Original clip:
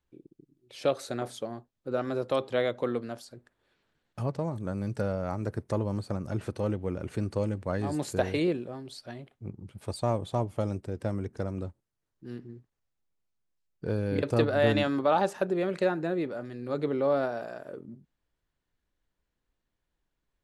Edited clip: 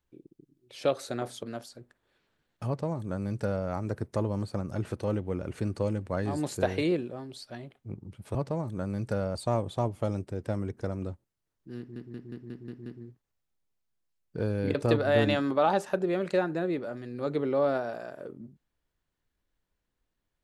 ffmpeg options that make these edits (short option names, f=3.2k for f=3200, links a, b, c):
-filter_complex "[0:a]asplit=10[a][b][c][d][e][f][g][h][i][j];[a]atrim=end=1.432[k];[b]atrim=start=2.988:end=9.912[l];[c]atrim=start=4.228:end=5.232[m];[d]atrim=start=9.908:end=12.522[n];[e]atrim=start=12.338:end=12.522[o];[f]atrim=start=12.338:end=12.522[p];[g]atrim=start=12.338:end=12.522[q];[h]atrim=start=12.338:end=12.522[r];[i]atrim=start=12.338:end=12.522[s];[j]atrim=start=12.338[t];[k][l]acrossfade=d=0.004:c1=hsin:c2=hsin[u];[u][m]acrossfade=d=0.004:c1=hsin:c2=hsin[v];[v][n]acrossfade=d=0.004:c1=hsin:c2=hsin[w];[w][o]acrossfade=d=0.004:c1=hsin:c2=hsin[x];[x][p]acrossfade=d=0.004:c1=hsin:c2=hsin[y];[y][q]acrossfade=d=0.004:c1=hsin:c2=hsin[z];[z][r]acrossfade=d=0.004:c1=hsin:c2=hsin[aa];[aa][s]acrossfade=d=0.004:c1=hsin:c2=hsin[ab];[ab][t]acrossfade=d=0.004:c1=hsin:c2=hsin"